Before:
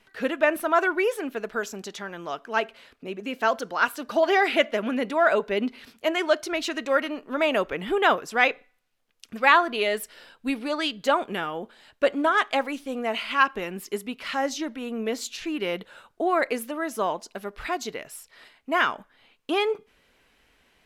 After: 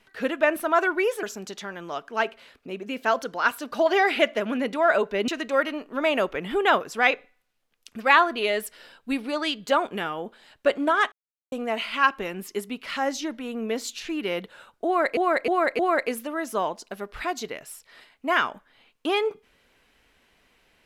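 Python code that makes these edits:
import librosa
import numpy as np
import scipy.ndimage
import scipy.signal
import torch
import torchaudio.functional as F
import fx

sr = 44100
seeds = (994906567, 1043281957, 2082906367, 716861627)

y = fx.edit(x, sr, fx.cut(start_s=1.23, length_s=0.37),
    fx.cut(start_s=5.65, length_s=1.0),
    fx.silence(start_s=12.49, length_s=0.4),
    fx.repeat(start_s=16.23, length_s=0.31, count=4), tone=tone)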